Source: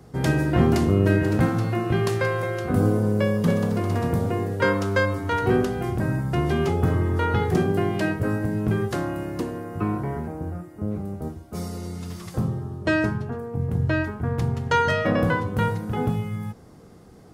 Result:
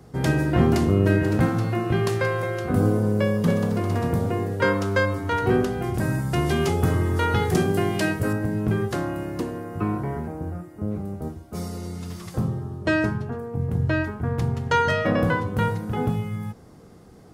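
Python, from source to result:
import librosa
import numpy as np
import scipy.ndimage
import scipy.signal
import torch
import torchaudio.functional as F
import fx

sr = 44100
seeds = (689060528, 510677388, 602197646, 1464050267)

y = fx.peak_eq(x, sr, hz=9700.0, db=9.5, octaves=2.7, at=(5.94, 8.33))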